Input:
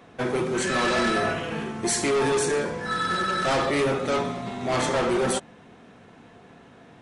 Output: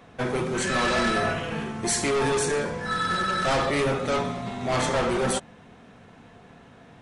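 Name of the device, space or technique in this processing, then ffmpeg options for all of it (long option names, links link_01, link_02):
low shelf boost with a cut just above: -af "lowshelf=frequency=83:gain=7.5,equalizer=frequency=340:width_type=o:width=0.6:gain=-4"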